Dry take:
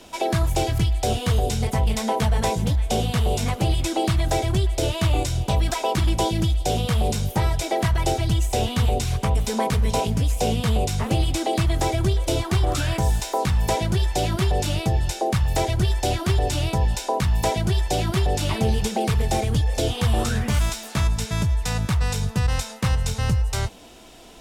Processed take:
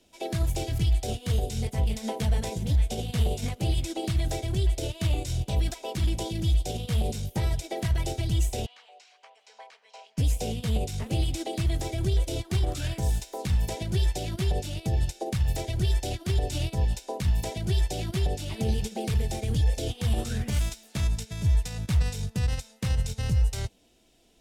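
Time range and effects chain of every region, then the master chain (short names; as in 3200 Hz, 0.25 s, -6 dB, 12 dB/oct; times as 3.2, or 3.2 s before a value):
8.66–10.18 HPF 720 Hz 24 dB/oct + air absorption 150 m + notch 3600 Hz, Q 13
whole clip: bell 1100 Hz -10 dB 1.2 oct; limiter -17.5 dBFS; upward expander 2.5:1, over -33 dBFS; gain +3 dB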